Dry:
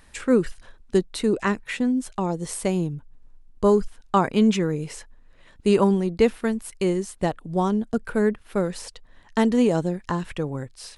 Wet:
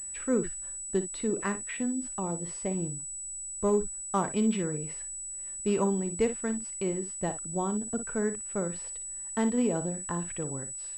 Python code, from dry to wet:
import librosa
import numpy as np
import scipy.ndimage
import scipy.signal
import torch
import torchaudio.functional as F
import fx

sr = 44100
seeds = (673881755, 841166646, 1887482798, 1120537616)

y = fx.median_filter(x, sr, points=15, at=(2.64, 4.33))
y = fx.room_early_taps(y, sr, ms=(41, 58), db=(-17.5, -11.5))
y = fx.pwm(y, sr, carrier_hz=7900.0)
y = y * 10.0 ** (-8.5 / 20.0)